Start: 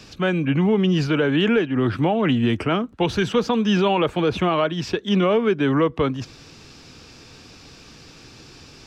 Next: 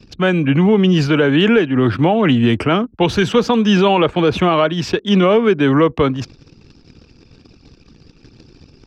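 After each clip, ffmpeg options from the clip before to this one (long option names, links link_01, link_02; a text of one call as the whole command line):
ffmpeg -i in.wav -af "anlmdn=0.251,volume=6dB" out.wav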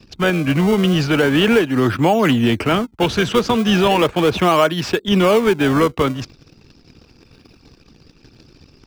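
ffmpeg -i in.wav -filter_complex "[0:a]lowshelf=frequency=490:gain=-6,asplit=2[link_01][link_02];[link_02]acrusher=samples=29:mix=1:aa=0.000001:lfo=1:lforange=46.4:lforate=0.37,volume=-9dB[link_03];[link_01][link_03]amix=inputs=2:normalize=0" out.wav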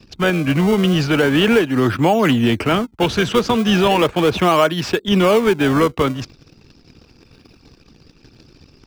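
ffmpeg -i in.wav -af anull out.wav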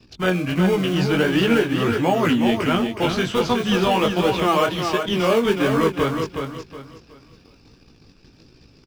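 ffmpeg -i in.wav -filter_complex "[0:a]flanger=delay=16:depth=6:speed=1.4,asplit=2[link_01][link_02];[link_02]aecho=0:1:368|736|1104|1472:0.501|0.155|0.0482|0.0149[link_03];[link_01][link_03]amix=inputs=2:normalize=0,volume=-1.5dB" out.wav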